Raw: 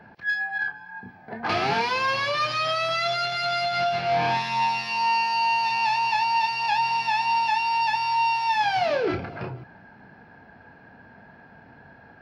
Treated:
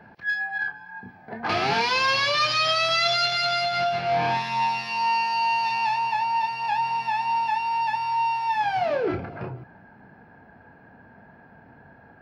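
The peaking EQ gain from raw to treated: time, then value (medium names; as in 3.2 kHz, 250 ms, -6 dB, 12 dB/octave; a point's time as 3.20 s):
peaking EQ 5 kHz 2.1 oct
1.41 s -1.5 dB
1.99 s +7.5 dB
3.27 s +7.5 dB
3.99 s -2.5 dB
5.72 s -2.5 dB
6.14 s -9.5 dB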